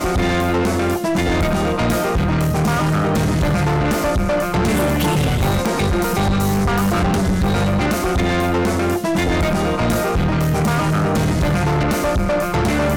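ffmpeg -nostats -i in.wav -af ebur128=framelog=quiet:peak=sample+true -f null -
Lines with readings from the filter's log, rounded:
Integrated loudness:
  I:         -18.0 LUFS
  Threshold: -28.0 LUFS
Loudness range:
  LRA:         0.4 LU
  Threshold: -38.0 LUFS
  LRA low:   -18.2 LUFS
  LRA high:  -17.8 LUFS
Sample peak:
  Peak:      -12.0 dBFS
True peak:
  Peak:      -11.5 dBFS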